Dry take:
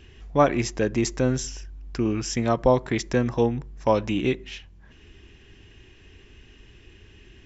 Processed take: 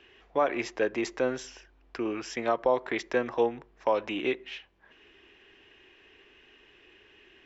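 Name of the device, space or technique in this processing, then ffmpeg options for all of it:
DJ mixer with the lows and highs turned down: -filter_complex "[0:a]acrossover=split=340 3900:gain=0.0708 1 0.141[link_01][link_02][link_03];[link_01][link_02][link_03]amix=inputs=3:normalize=0,alimiter=limit=-13.5dB:level=0:latency=1:release=139"

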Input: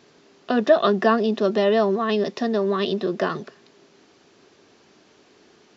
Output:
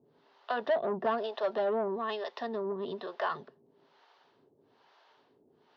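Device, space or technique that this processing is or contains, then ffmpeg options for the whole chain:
guitar amplifier with harmonic tremolo: -filter_complex "[0:a]asettb=1/sr,asplit=3[link_01][link_02][link_03];[link_01]atrim=end=0.604[link_04];[link_02]atrim=start=0.6:end=1.88,asetpts=PTS-STARTPTS,afade=type=in:duration=0.004:curve=qsin,afade=type=out:start_time=1.276:duration=0.004:curve=qsin,equalizer=frequency=640:width=2.3:gain=5.5[link_05];[link_03]atrim=start=1.876[link_06];[link_04][link_05]acrossfade=duration=0.004:curve1=hsin:curve2=qsin[link_07];[link_07][link_06]acrossfade=duration=0.004:curve1=qsin:curve2=hsin,acrossover=split=510[link_08][link_09];[link_08]aeval=exprs='val(0)*(1-1/2+1/2*cos(2*PI*1.1*n/s))':channel_layout=same[link_10];[link_09]aeval=exprs='val(0)*(1-1/2-1/2*cos(2*PI*1.1*n/s))':channel_layout=same[link_11];[link_10][link_11]amix=inputs=2:normalize=0,asoftclip=type=tanh:threshold=-19.5dB,highpass=82,equalizer=frequency=88:width_type=q:width=4:gain=-7,equalizer=frequency=200:width_type=q:width=4:gain=-9,equalizer=frequency=330:width_type=q:width=4:gain=-7,equalizer=frequency=920:width_type=q:width=4:gain=8,equalizer=frequency=2400:width_type=q:width=4:gain=-7,lowpass=frequency=4000:width=0.5412,lowpass=frequency=4000:width=1.3066,volume=-4dB"

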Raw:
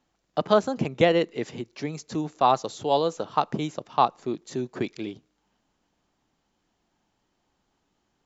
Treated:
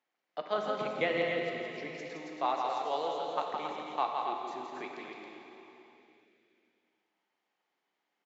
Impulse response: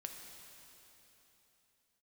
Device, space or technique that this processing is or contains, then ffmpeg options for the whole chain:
station announcement: -filter_complex "[0:a]highpass=430,lowpass=4700,equalizer=frequency=2100:width_type=o:width=0.47:gain=8,aecho=1:1:166.2|274.1:0.562|0.501[link_01];[1:a]atrim=start_sample=2205[link_02];[link_01][link_02]afir=irnorm=-1:irlink=0,asettb=1/sr,asplit=3[link_03][link_04][link_05];[link_03]atrim=end=0.584[link_06];[link_04]atrim=start=0.58:end=2.09,asetpts=PTS-STARTPTS,afade=type=in:duration=0.004:curve=qsin,afade=type=out:start_time=1.506:duration=0.004:curve=qsin,bass=frequency=250:gain=8,treble=frequency=4000:gain=1[link_07];[link_05]atrim=start=2.086[link_08];[link_06][link_07]acrossfade=duration=0.004:curve1=hsin:curve2=qsin[link_09];[link_09][link_08]acrossfade=duration=0.004:curve1=qsin:curve2=hsin,volume=-6.5dB"

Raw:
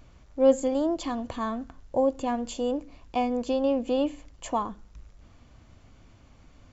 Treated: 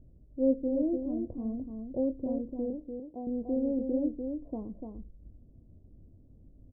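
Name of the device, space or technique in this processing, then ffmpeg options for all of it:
under water: -filter_complex "[0:a]asettb=1/sr,asplit=3[link_01][link_02][link_03];[link_01]atrim=end=2.704[link_04];[link_02]atrim=start=2.7:end=3.27,asetpts=PTS-STARTPTS,afade=type=in:duration=0.004:curve=qsin,afade=type=out:start_time=0.566:duration=0.004:curve=qsin,aemphasis=mode=production:type=riaa[link_05];[link_03]atrim=start=3.266[link_06];[link_04][link_05]acrossfade=duration=0.004:curve1=hsin:curve2=qsin[link_07];[link_07][link_06]acrossfade=duration=0.004:curve1=qsin:curve2=hsin,lowpass=frequency=420:width=0.5412,lowpass=frequency=420:width=1.3066,equalizer=frequency=620:width_type=o:width=0.48:gain=4,asplit=2[link_08][link_09];[link_09]adelay=23,volume=-11.5dB[link_10];[link_08][link_10]amix=inputs=2:normalize=0,aecho=1:1:294:0.531,volume=-2.5dB"

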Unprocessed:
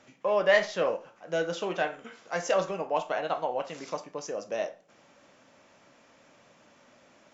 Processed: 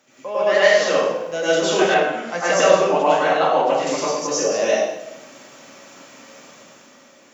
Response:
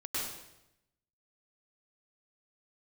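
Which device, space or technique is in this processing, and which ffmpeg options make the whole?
far laptop microphone: -filter_complex "[0:a]highpass=120,aemphasis=mode=production:type=50fm[link_01];[1:a]atrim=start_sample=2205[link_02];[link_01][link_02]afir=irnorm=-1:irlink=0,highpass=100,dynaudnorm=framelen=180:gausssize=9:maxgain=7.5dB,asettb=1/sr,asplit=3[link_03][link_04][link_05];[link_03]atrim=end=1.944[link_06];[link_04]atrim=start=1.94:end=3.87,asetpts=PTS-STARTPTS,afade=type=in:duration=0.004:curve=qsin,afade=type=out:start_time=1.926:duration=0.004:curve=qsin,highshelf=frequency=6000:gain=-11.5[link_07];[link_05]atrim=start=3.866[link_08];[link_06][link_07]acrossfade=duration=0.004:curve1=hsin:curve2=qsin[link_09];[link_09][link_08]acrossfade=duration=0.004:curve1=qsin:curve2=hsin,volume=3dB"

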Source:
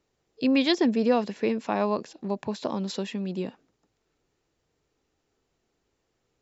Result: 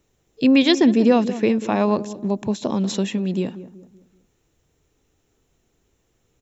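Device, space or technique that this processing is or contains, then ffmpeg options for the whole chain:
smiley-face EQ: -filter_complex "[0:a]lowshelf=frequency=120:gain=6,equalizer=frequency=1000:width_type=o:width=2.8:gain=-4,equalizer=frequency=4700:width_type=o:width=0.25:gain=-10.5,highshelf=frequency=6500:gain=7,asplit=2[link_01][link_02];[link_02]adelay=190,lowpass=frequency=880:poles=1,volume=-13dB,asplit=2[link_03][link_04];[link_04]adelay=190,lowpass=frequency=880:poles=1,volume=0.42,asplit=2[link_05][link_06];[link_06]adelay=190,lowpass=frequency=880:poles=1,volume=0.42,asplit=2[link_07][link_08];[link_08]adelay=190,lowpass=frequency=880:poles=1,volume=0.42[link_09];[link_01][link_03][link_05][link_07][link_09]amix=inputs=5:normalize=0,asplit=3[link_10][link_11][link_12];[link_10]afade=type=out:start_time=1.96:duration=0.02[link_13];[link_11]adynamicequalizer=threshold=0.00251:dfrequency=1800:dqfactor=0.85:tfrequency=1800:tqfactor=0.85:attack=5:release=100:ratio=0.375:range=3.5:mode=cutabove:tftype=bell,afade=type=in:start_time=1.96:duration=0.02,afade=type=out:start_time=2.7:duration=0.02[link_14];[link_12]afade=type=in:start_time=2.7:duration=0.02[link_15];[link_13][link_14][link_15]amix=inputs=3:normalize=0,volume=8dB"

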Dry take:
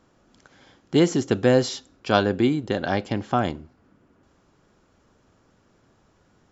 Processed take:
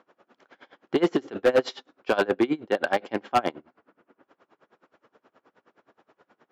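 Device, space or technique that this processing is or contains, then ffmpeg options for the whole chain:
helicopter radio: -af "highpass=390,lowpass=2600,aeval=exprs='val(0)*pow(10,-26*(0.5-0.5*cos(2*PI*9.5*n/s))/20)':channel_layout=same,asoftclip=type=hard:threshold=-23dB,volume=9dB"

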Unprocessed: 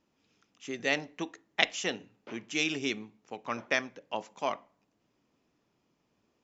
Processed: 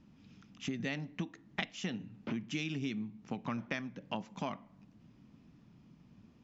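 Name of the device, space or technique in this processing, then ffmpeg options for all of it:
jukebox: -af "lowpass=5300,lowshelf=frequency=290:width_type=q:width=1.5:gain=12.5,acompressor=threshold=-41dB:ratio=6,volume=5.5dB"

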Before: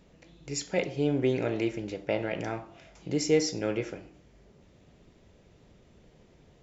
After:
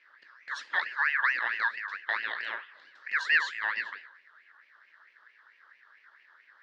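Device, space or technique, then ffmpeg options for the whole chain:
voice changer toy: -af "aeval=exprs='val(0)*sin(2*PI*1800*n/s+1800*0.3/4.5*sin(2*PI*4.5*n/s))':channel_layout=same,highpass=440,equalizer=frequency=740:width_type=q:width=4:gain=-9,equalizer=frequency=1700:width_type=q:width=4:gain=8,equalizer=frequency=2400:width_type=q:width=4:gain=-8,lowpass=frequency=4500:width=0.5412,lowpass=frequency=4500:width=1.3066"

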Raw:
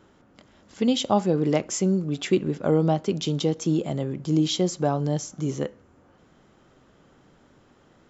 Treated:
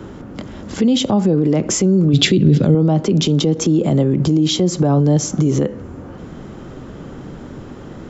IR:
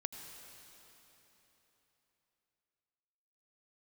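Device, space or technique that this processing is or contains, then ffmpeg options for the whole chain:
mastering chain: -filter_complex "[0:a]equalizer=frequency=670:width_type=o:width=0.77:gain=-2.5,acrossover=split=130|280[link_01][link_02][link_03];[link_01]acompressor=threshold=-47dB:ratio=4[link_04];[link_02]acompressor=threshold=-29dB:ratio=4[link_05];[link_03]acompressor=threshold=-27dB:ratio=4[link_06];[link_04][link_05][link_06]amix=inputs=3:normalize=0,acompressor=threshold=-32dB:ratio=3,tiltshelf=frequency=750:gain=5.5,alimiter=level_in=27.5dB:limit=-1dB:release=50:level=0:latency=1,asettb=1/sr,asplit=3[link_07][link_08][link_09];[link_07]atrim=end=2.134[link_10];[link_08]atrim=start=2.13:end=2.75,asetpts=PTS-STARTPTS,afade=type=in:duration=0.004:curve=qsin,afade=type=out:start_time=0.616:duration=0.004:curve=qsin,equalizer=frequency=125:width_type=o:width=1:gain=11,equalizer=frequency=1000:width_type=o:width=1:gain=-8,equalizer=frequency=4000:width_type=o:width=1:gain=11[link_11];[link_09]atrim=start=2.746[link_12];[link_10][link_11]acrossfade=duration=0.004:curve1=hsin:curve2=qsin[link_13];[link_13][link_12]acrossfade=duration=0.004:curve1=qsin:curve2=hsin,volume=-6.5dB"

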